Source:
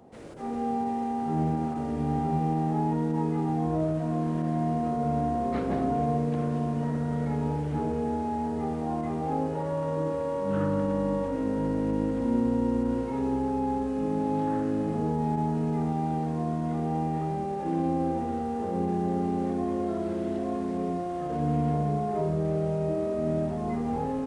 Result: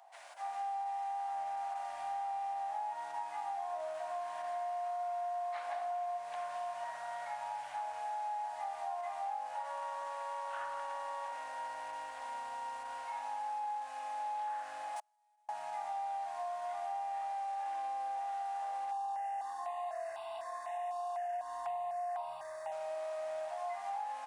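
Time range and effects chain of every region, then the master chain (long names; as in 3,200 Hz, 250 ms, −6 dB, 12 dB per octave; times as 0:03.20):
0:14.96–0:15.49: RIAA equalisation recording + gate with flip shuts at −25 dBFS, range −40 dB
0:18.91–0:22.72: comb filter 1.1 ms, depth 79% + step-sequenced phaser 4 Hz 550–1,800 Hz
whole clip: elliptic high-pass filter 690 Hz, stop band 40 dB; notch filter 1,300 Hz, Q 9.3; downward compressor, threshold −37 dBFS; level +1 dB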